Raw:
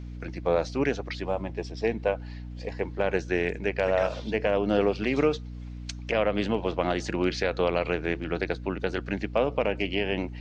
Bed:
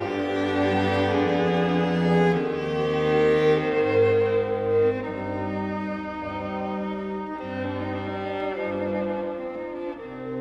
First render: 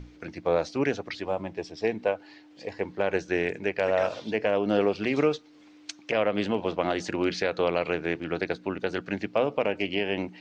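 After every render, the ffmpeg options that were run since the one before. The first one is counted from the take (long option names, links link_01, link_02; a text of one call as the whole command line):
ffmpeg -i in.wav -af "bandreject=frequency=60:width_type=h:width=6,bandreject=frequency=120:width_type=h:width=6,bandreject=frequency=180:width_type=h:width=6,bandreject=frequency=240:width_type=h:width=6" out.wav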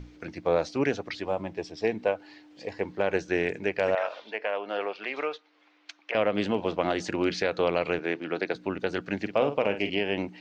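ffmpeg -i in.wav -filter_complex "[0:a]asettb=1/sr,asplit=3[link_01][link_02][link_03];[link_01]atrim=end=3.954[link_04];[link_02]atrim=start=3.95:end=6.15,asetpts=PTS-STARTPTS,afade=type=in:duration=0.004:curve=qsin,afade=type=out:start_time=2.196:duration=0.004:curve=qsin,highpass=710,lowpass=3100[link_05];[link_03]atrim=start=6.146[link_06];[link_04][link_05]acrossfade=duration=0.004:curve1=hsin:curve2=qsin[link_07];[link_07][link_06]acrossfade=duration=0.004:curve1=qsin:curve2=hsin,asettb=1/sr,asplit=3[link_08][link_09][link_10];[link_08]atrim=end=7.994[link_11];[link_09]atrim=start=7.99:end=8.55,asetpts=PTS-STARTPTS,afade=type=in:duration=0.004:curve=qsin,afade=type=out:start_time=0.556:duration=0.004:curve=qsin,highpass=220,lowpass=6100[link_12];[link_10]atrim=start=8.546[link_13];[link_11][link_12]acrossfade=duration=0.004:curve1=hsin:curve2=qsin[link_14];[link_14][link_13]acrossfade=duration=0.004:curve1=qsin:curve2=hsin,asettb=1/sr,asplit=3[link_15][link_16][link_17];[link_15]atrim=end=9.184[link_18];[link_16]atrim=start=9.18:end=9.9,asetpts=PTS-STARTPTS,afade=type=in:duration=0.004:curve=qsin,afade=type=out:start_time=0.716:duration=0.004:curve=qsin,asplit=2[link_19][link_20];[link_20]adelay=49,volume=-9dB[link_21];[link_19][link_21]amix=inputs=2:normalize=0,atrim=end_sample=31752[link_22];[link_17]atrim=start=9.896[link_23];[link_18][link_22]acrossfade=duration=0.004:curve1=hsin:curve2=qsin[link_24];[link_24][link_23]acrossfade=duration=0.004:curve1=qsin:curve2=hsin" out.wav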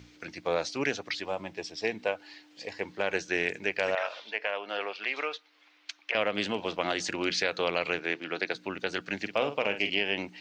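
ffmpeg -i in.wav -af "highpass=81,tiltshelf=frequency=1400:gain=-6.5" out.wav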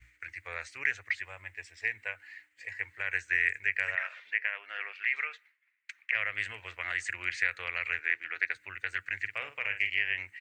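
ffmpeg -i in.wav -af "agate=range=-33dB:threshold=-51dB:ratio=3:detection=peak,firequalizer=gain_entry='entry(100,0);entry(160,-30);entry(450,-20);entry(760,-19);entry(1900,8);entry(3300,-14);entry(5400,-17);entry(7900,1)':delay=0.05:min_phase=1" out.wav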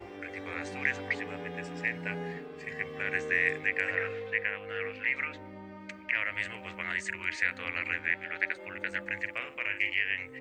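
ffmpeg -i in.wav -i bed.wav -filter_complex "[1:a]volume=-18dB[link_01];[0:a][link_01]amix=inputs=2:normalize=0" out.wav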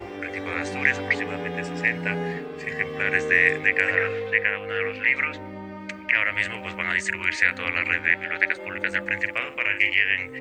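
ffmpeg -i in.wav -af "volume=9dB,alimiter=limit=-3dB:level=0:latency=1" out.wav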